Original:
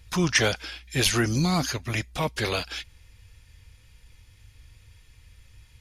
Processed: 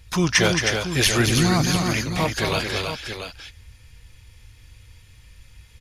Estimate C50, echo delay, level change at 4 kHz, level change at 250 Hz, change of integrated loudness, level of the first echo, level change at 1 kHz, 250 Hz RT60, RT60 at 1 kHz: none, 0.221 s, +5.0 dB, +5.0 dB, +5.0 dB, -6.5 dB, +5.0 dB, none, none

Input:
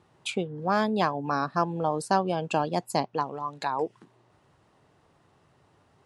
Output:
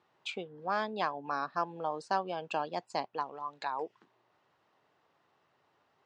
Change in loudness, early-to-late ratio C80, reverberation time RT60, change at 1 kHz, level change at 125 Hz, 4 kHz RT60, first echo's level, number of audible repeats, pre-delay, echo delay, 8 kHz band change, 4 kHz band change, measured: -7.5 dB, none, none, -6.5 dB, -17.0 dB, none, none, none, none, none, under -10 dB, -6.5 dB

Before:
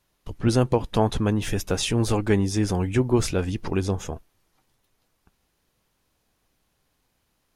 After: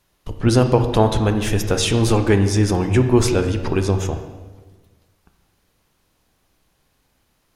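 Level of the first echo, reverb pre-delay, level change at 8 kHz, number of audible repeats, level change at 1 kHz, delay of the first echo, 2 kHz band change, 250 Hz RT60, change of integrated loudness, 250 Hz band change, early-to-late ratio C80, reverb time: none, 25 ms, +5.5 dB, none, +6.0 dB, none, +6.0 dB, 1.6 s, +6.0 dB, +5.0 dB, 10.0 dB, 1.3 s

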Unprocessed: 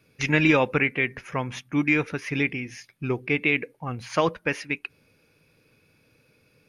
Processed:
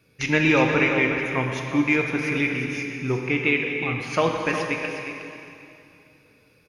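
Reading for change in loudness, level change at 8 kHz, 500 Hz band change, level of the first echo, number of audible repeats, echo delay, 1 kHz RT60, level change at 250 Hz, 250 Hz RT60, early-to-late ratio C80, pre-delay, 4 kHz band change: +2.0 dB, +2.5 dB, +3.0 dB, -9.0 dB, 1, 0.362 s, 2.8 s, +2.5 dB, 2.8 s, 2.5 dB, 6 ms, +2.5 dB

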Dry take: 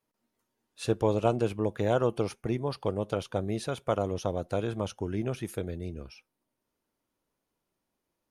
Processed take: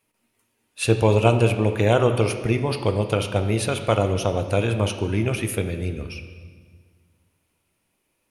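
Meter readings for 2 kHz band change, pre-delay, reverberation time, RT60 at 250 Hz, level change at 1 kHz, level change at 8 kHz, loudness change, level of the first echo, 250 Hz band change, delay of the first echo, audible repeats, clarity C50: +14.0 dB, 15 ms, 1.6 s, 2.0 s, +8.0 dB, +13.0 dB, +9.0 dB, none, +7.5 dB, none, none, 8.5 dB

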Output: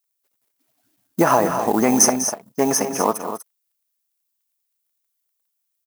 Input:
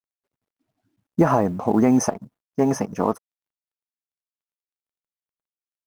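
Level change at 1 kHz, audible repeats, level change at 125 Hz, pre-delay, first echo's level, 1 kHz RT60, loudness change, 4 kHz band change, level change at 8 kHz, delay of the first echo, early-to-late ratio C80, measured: +5.0 dB, 3, -5.0 dB, none, -20.0 dB, none, +3.0 dB, +13.5 dB, +15.0 dB, 64 ms, none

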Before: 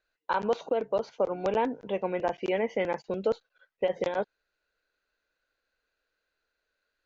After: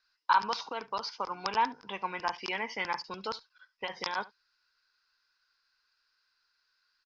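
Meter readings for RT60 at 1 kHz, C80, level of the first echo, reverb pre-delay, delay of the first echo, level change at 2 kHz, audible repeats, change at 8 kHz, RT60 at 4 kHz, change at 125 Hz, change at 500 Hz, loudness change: none, none, -20.5 dB, none, 71 ms, +3.5 dB, 1, n/a, none, -10.0 dB, -14.5 dB, -3.0 dB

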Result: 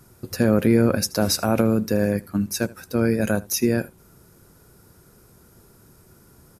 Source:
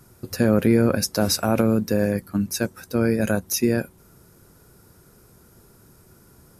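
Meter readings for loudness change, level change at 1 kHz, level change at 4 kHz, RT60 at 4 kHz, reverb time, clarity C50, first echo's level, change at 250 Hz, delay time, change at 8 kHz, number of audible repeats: 0.0 dB, 0.0 dB, 0.0 dB, none, none, none, -21.5 dB, 0.0 dB, 78 ms, 0.0 dB, 1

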